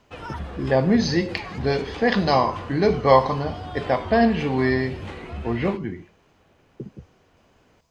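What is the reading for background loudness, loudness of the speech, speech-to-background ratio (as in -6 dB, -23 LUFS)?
-36.0 LUFS, -22.0 LUFS, 14.0 dB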